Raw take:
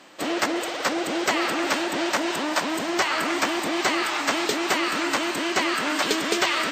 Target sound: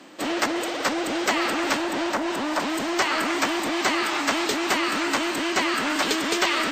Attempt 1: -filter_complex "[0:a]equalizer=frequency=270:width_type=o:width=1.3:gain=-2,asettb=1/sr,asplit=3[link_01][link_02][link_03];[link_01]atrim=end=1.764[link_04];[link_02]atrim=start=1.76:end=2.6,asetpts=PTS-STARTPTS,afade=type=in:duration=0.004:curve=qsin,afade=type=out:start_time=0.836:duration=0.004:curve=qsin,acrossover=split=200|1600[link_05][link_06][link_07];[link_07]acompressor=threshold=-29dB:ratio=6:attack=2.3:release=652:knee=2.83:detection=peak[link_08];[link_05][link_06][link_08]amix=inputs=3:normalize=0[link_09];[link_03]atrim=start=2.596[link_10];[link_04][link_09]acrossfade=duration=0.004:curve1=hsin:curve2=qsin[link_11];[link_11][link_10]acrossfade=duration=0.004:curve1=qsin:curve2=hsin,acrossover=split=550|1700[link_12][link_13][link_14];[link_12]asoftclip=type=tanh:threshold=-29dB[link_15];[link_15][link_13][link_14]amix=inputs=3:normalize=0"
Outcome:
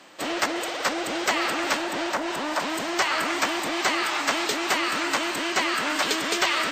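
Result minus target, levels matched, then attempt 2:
250 Hz band −3.5 dB
-filter_complex "[0:a]equalizer=frequency=270:width_type=o:width=1.3:gain=8.5,asettb=1/sr,asplit=3[link_01][link_02][link_03];[link_01]atrim=end=1.764[link_04];[link_02]atrim=start=1.76:end=2.6,asetpts=PTS-STARTPTS,afade=type=in:duration=0.004:curve=qsin,afade=type=out:start_time=0.836:duration=0.004:curve=qsin,acrossover=split=200|1600[link_05][link_06][link_07];[link_07]acompressor=threshold=-29dB:ratio=6:attack=2.3:release=652:knee=2.83:detection=peak[link_08];[link_05][link_06][link_08]amix=inputs=3:normalize=0[link_09];[link_03]atrim=start=2.596[link_10];[link_04][link_09]acrossfade=duration=0.004:curve1=hsin:curve2=qsin[link_11];[link_11][link_10]acrossfade=duration=0.004:curve1=qsin:curve2=hsin,acrossover=split=550|1700[link_12][link_13][link_14];[link_12]asoftclip=type=tanh:threshold=-29dB[link_15];[link_15][link_13][link_14]amix=inputs=3:normalize=0"

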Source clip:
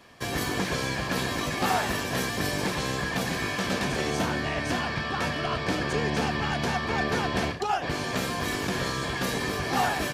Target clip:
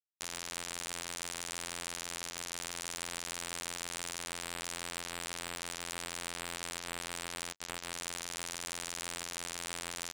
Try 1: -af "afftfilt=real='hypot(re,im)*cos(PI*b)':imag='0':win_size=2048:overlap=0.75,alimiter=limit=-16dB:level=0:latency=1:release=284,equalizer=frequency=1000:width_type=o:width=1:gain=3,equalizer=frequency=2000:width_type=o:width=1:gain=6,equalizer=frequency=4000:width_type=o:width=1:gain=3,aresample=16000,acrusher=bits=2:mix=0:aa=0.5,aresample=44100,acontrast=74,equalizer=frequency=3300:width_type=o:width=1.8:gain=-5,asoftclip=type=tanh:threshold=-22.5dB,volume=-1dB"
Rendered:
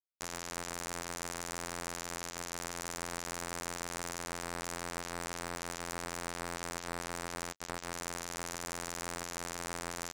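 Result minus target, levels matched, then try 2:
4,000 Hz band −3.5 dB
-af "afftfilt=real='hypot(re,im)*cos(PI*b)':imag='0':win_size=2048:overlap=0.75,alimiter=limit=-16dB:level=0:latency=1:release=284,equalizer=frequency=1000:width_type=o:width=1:gain=3,equalizer=frequency=2000:width_type=o:width=1:gain=6,equalizer=frequency=4000:width_type=o:width=1:gain=3,aresample=16000,acrusher=bits=2:mix=0:aa=0.5,aresample=44100,acontrast=74,asoftclip=type=tanh:threshold=-22.5dB,volume=-1dB"

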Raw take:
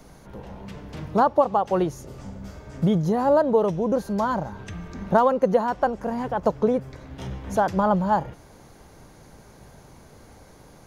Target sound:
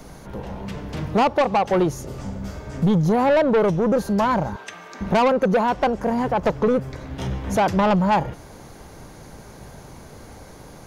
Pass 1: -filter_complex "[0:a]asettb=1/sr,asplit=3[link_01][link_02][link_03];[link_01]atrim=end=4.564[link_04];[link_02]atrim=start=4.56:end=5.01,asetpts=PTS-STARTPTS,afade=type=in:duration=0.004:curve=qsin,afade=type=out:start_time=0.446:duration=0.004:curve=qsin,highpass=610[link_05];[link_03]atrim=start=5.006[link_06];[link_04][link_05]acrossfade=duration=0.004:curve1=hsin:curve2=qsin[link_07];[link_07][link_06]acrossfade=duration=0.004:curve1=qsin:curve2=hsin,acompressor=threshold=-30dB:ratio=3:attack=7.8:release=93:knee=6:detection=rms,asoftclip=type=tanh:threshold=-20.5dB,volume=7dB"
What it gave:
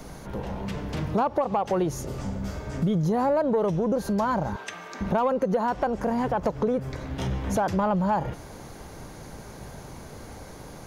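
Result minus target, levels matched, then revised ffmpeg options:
downward compressor: peak gain reduction +13.5 dB
-filter_complex "[0:a]asettb=1/sr,asplit=3[link_01][link_02][link_03];[link_01]atrim=end=4.564[link_04];[link_02]atrim=start=4.56:end=5.01,asetpts=PTS-STARTPTS,afade=type=in:duration=0.004:curve=qsin,afade=type=out:start_time=0.446:duration=0.004:curve=qsin,highpass=610[link_05];[link_03]atrim=start=5.006[link_06];[link_04][link_05]acrossfade=duration=0.004:curve1=hsin:curve2=qsin[link_07];[link_07][link_06]acrossfade=duration=0.004:curve1=qsin:curve2=hsin,asoftclip=type=tanh:threshold=-20.5dB,volume=7dB"

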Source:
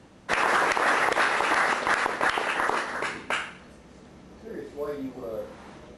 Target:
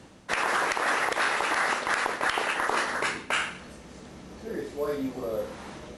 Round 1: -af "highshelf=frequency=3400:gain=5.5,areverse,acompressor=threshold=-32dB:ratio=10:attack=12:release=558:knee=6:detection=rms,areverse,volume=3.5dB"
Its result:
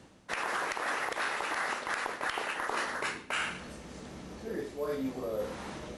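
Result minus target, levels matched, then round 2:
downward compressor: peak gain reduction +7 dB
-af "highshelf=frequency=3400:gain=5.5,areverse,acompressor=threshold=-24dB:ratio=10:attack=12:release=558:knee=6:detection=rms,areverse,volume=3.5dB"

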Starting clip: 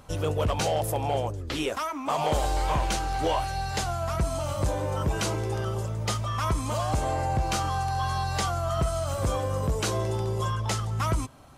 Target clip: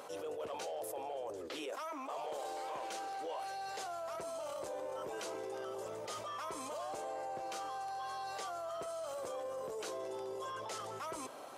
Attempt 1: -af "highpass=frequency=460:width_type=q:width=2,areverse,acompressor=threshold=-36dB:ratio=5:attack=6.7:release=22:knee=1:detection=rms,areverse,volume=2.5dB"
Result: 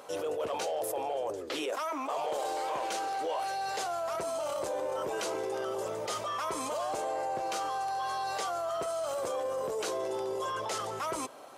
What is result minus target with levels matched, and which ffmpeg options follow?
downward compressor: peak gain reduction −8.5 dB
-af "highpass=frequency=460:width_type=q:width=2,areverse,acompressor=threshold=-46.5dB:ratio=5:attack=6.7:release=22:knee=1:detection=rms,areverse,volume=2.5dB"

